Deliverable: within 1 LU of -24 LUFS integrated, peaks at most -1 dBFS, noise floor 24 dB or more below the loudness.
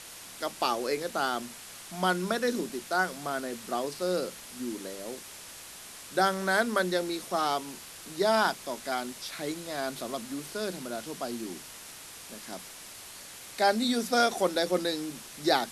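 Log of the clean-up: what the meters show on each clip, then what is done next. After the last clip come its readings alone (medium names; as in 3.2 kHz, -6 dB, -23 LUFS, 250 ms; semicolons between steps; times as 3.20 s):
noise floor -46 dBFS; noise floor target -55 dBFS; loudness -30.5 LUFS; peak level -10.0 dBFS; loudness target -24.0 LUFS
-> noise reduction 9 dB, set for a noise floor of -46 dBFS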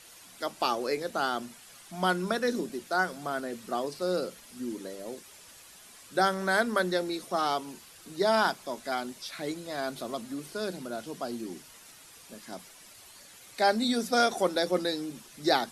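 noise floor -52 dBFS; noise floor target -55 dBFS
-> noise reduction 6 dB, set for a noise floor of -52 dBFS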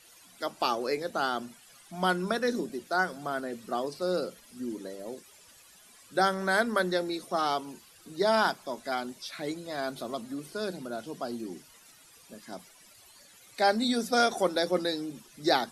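noise floor -57 dBFS; loudness -30.5 LUFS; peak level -10.5 dBFS; loudness target -24.0 LUFS
-> trim +6.5 dB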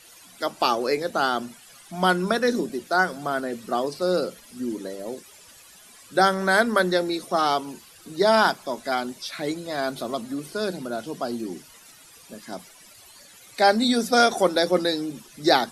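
loudness -24.0 LUFS; peak level -4.0 dBFS; noise floor -50 dBFS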